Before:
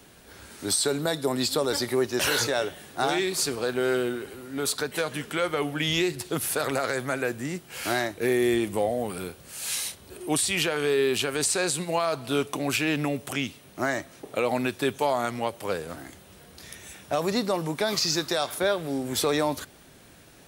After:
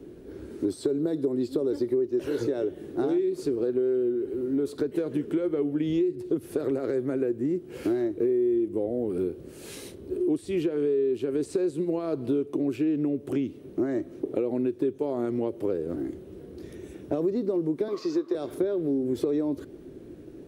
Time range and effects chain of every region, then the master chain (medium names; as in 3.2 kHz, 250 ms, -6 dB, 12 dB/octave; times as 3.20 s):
17.88–18.35 s: high-pass 380 Hz + treble shelf 5.7 kHz -11 dB + small resonant body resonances 1.1 kHz, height 17 dB, ringing for 35 ms
whole clip: FFT filter 200 Hz 0 dB, 350 Hz +13 dB, 760 Hz -12 dB, 7.5 kHz -21 dB; compression 6:1, threshold -29 dBFS; trim +5 dB